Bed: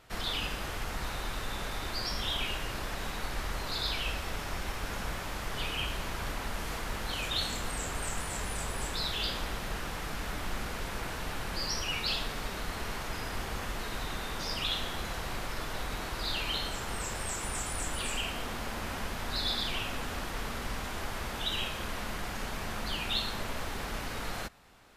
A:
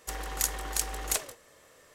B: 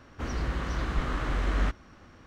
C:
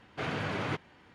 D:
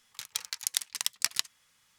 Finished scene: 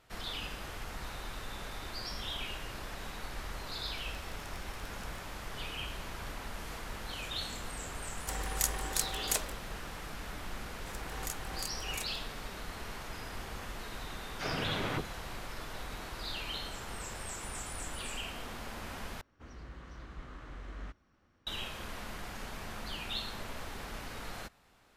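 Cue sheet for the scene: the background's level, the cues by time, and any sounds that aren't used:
bed -6 dB
3.79 s: add D -15 dB + compression, threshold -42 dBFS
8.20 s: add A -2.5 dB
10.86 s: add A -13 dB + swell ahead of each attack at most 43 dB/s
14.21 s: add C -2 dB + phase dispersion lows, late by 48 ms, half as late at 1.1 kHz
19.21 s: replace with B -17.5 dB

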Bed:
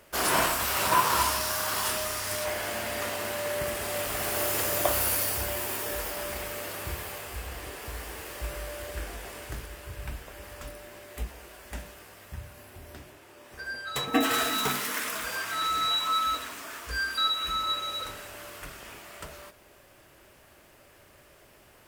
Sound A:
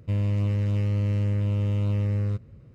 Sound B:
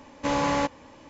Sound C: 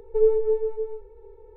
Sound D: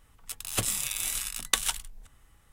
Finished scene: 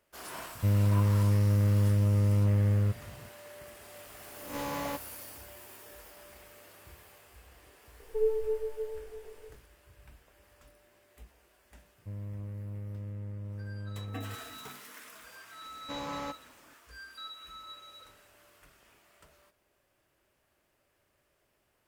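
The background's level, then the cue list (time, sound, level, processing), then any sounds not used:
bed -18 dB
0.55 s: add A -0.5 dB + resonant high shelf 2.2 kHz -6 dB, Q 1.5
4.30 s: add B -12 dB + reverse spectral sustain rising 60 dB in 0.45 s
8.00 s: add C -9 dB + delay 650 ms -14.5 dB
11.98 s: add A -15.5 dB + low-pass 1.9 kHz 24 dB/octave
15.65 s: add B -14 dB
not used: D

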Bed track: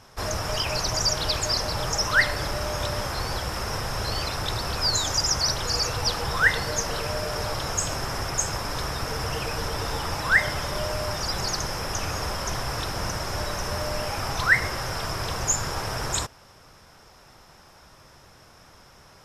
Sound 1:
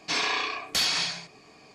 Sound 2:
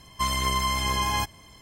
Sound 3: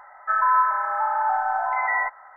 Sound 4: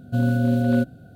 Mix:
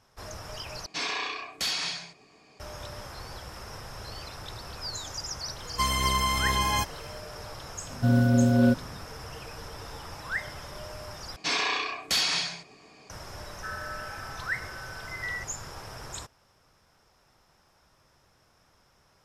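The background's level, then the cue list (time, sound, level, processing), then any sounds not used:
bed track -12.5 dB
0.86 s: replace with 1 -4.5 dB
5.59 s: add 2 -0.5 dB
7.90 s: add 4 -1 dB
11.36 s: replace with 1 -0.5 dB
13.35 s: add 3 -9 dB + Chebyshev band-stop 260–1400 Hz, order 5

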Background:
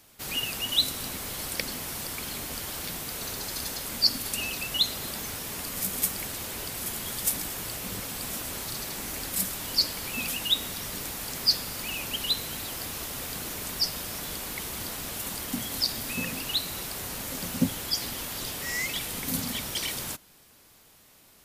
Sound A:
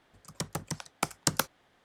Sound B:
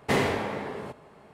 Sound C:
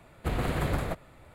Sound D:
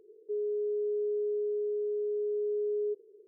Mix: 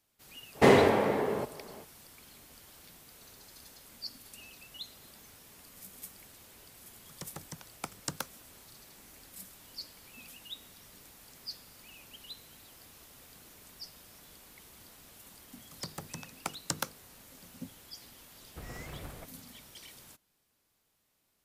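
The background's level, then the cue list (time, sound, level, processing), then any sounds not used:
background -19.5 dB
0.53 s: add B, fades 0.05 s + peaking EQ 450 Hz +6.5 dB 2.1 oct
6.81 s: add A -9.5 dB
15.43 s: add A -6.5 dB + hum notches 50/100/150/200/250/300/350/400/450/500 Hz
18.31 s: add C -16 dB
not used: D

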